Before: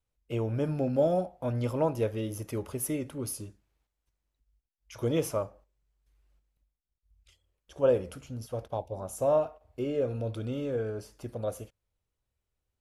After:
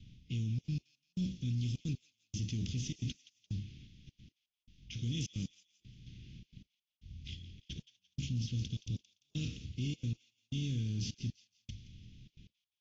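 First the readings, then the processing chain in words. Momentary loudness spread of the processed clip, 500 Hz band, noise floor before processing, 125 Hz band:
18 LU, −31.0 dB, below −85 dBFS, −0.5 dB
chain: compressor on every frequency bin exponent 0.6
Butterworth low-pass 6,900 Hz 96 dB per octave
low-pass that shuts in the quiet parts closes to 2,400 Hz, open at −21.5 dBFS
elliptic band-stop filter 200–3,200 Hz, stop band 80 dB
parametric band 160 Hz −7 dB 0.24 octaves
mains-hum notches 50/100 Hz
reversed playback
downward compressor 20 to 1, threshold −43 dBFS, peak gain reduction 14 dB
reversed playback
brickwall limiter −42.5 dBFS, peak gain reduction 7 dB
gate pattern "xxxxxx.x...." 154 BPM −60 dB
on a send: delay with a high-pass on its return 172 ms, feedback 36%, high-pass 1,800 Hz, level −15 dB
on the sum: level +14 dB
AAC 32 kbit/s 24,000 Hz

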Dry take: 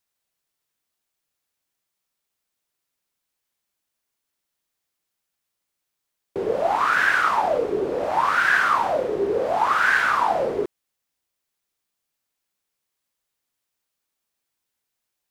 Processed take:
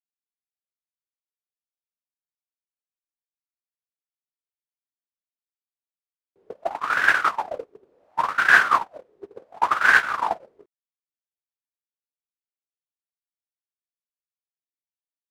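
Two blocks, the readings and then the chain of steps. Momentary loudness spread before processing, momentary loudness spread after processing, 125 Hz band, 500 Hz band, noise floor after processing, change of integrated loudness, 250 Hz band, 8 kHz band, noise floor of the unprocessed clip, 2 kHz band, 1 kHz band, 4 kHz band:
8 LU, 18 LU, can't be measured, −12.5 dB, below −85 dBFS, +1.0 dB, −11.5 dB, −0.5 dB, −81 dBFS, +1.5 dB, −3.0 dB, −0.5 dB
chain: noise gate −17 dBFS, range −44 dB
level +7.5 dB

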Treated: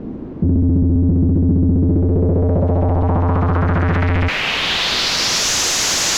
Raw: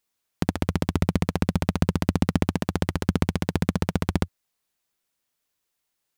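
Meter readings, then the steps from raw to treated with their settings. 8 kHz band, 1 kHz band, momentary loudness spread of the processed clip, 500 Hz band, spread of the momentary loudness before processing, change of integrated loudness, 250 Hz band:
+22.5 dB, +10.5 dB, 2 LU, +10.5 dB, 3 LU, +10.5 dB, +8.5 dB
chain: sign of each sample alone
parametric band 8,800 Hz −8 dB 0.39 octaves
bit reduction 5 bits
low-pass filter sweep 280 Hz → 6,500 Hz, 0:01.71–0:05.51
level +8.5 dB

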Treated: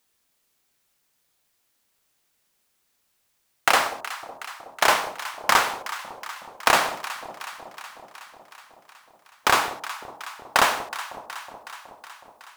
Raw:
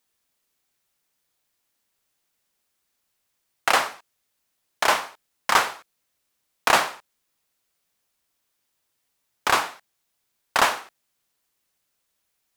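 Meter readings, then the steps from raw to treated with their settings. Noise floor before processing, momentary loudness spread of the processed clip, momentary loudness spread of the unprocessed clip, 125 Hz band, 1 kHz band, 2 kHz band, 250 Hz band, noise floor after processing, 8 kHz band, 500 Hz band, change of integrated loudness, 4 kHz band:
−76 dBFS, 19 LU, 12 LU, +2.0 dB, +1.0 dB, +1.5 dB, +1.5 dB, −71 dBFS, +1.5 dB, +1.0 dB, −1.0 dB, +1.5 dB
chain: downward compressor 3 to 1, threshold −19 dBFS, peak gain reduction 6 dB
floating-point word with a short mantissa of 2 bits
delay that swaps between a low-pass and a high-pass 185 ms, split 860 Hz, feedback 81%, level −12 dB
level +4.5 dB

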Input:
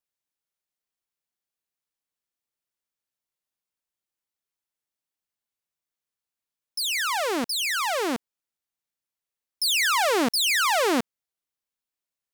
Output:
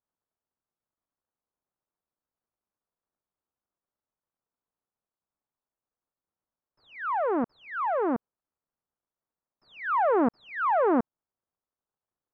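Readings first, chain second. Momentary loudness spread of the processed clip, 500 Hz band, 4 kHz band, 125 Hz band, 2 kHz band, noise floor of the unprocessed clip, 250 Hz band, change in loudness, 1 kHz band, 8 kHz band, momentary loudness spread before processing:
11 LU, +0.5 dB, below −30 dB, +1.0 dB, −10.0 dB, below −85 dBFS, +1.0 dB, −4.5 dB, 0.0 dB, below −40 dB, 9 LU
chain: mu-law and A-law mismatch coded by mu
low-pass filter 1,300 Hz 24 dB per octave

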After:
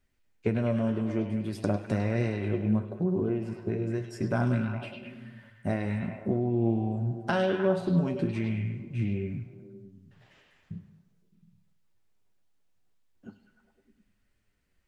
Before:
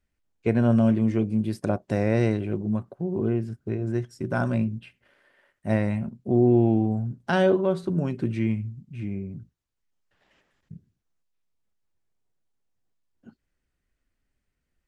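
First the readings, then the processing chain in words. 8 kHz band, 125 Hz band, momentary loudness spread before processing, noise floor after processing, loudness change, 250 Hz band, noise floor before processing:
can't be measured, −3.5 dB, 13 LU, −71 dBFS, −4.5 dB, −5.0 dB, −79 dBFS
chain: downward compressor 3 to 1, threshold −30 dBFS, peak gain reduction 11.5 dB
flanger 0.43 Hz, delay 7.4 ms, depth 4.9 ms, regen +50%
on a send: echo through a band-pass that steps 102 ms, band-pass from 3,400 Hz, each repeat −0.7 octaves, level −2 dB
on the sum: reverb whose tail is shaped and stops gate 450 ms falling, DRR 11.5 dB
highs frequency-modulated by the lows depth 0.1 ms
level +7.5 dB

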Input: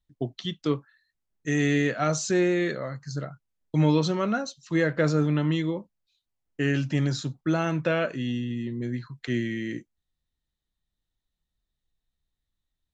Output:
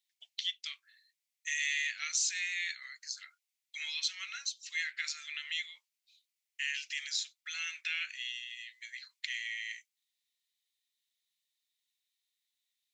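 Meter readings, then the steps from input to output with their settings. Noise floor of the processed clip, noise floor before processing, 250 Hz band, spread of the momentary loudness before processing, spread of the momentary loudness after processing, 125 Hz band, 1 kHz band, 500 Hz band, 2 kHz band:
below −85 dBFS, −84 dBFS, below −40 dB, 12 LU, 14 LU, below −40 dB, −23.0 dB, below −40 dB, −3.0 dB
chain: Chebyshev high-pass filter 2,100 Hz, order 4
in parallel at +1 dB: downward compressor, threshold −46 dBFS, peak gain reduction 15.5 dB

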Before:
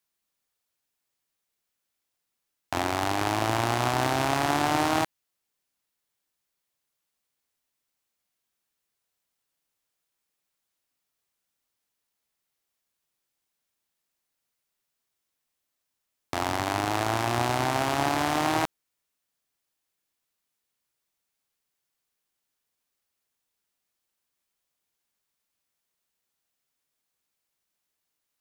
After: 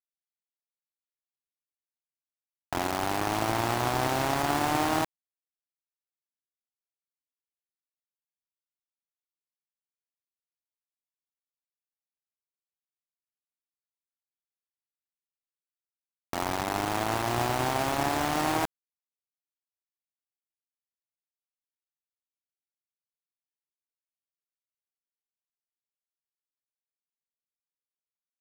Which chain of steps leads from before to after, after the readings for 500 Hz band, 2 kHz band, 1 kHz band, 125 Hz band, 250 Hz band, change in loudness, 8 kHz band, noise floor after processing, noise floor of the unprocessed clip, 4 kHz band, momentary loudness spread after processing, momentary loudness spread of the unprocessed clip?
−1.5 dB, −2.5 dB, −2.0 dB, −2.5 dB, −2.0 dB, −2.0 dB, −1.0 dB, below −85 dBFS, −82 dBFS, −2.5 dB, 6 LU, 6 LU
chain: high-shelf EQ 3,200 Hz −11 dB
bit reduction 5 bits
level −1.5 dB

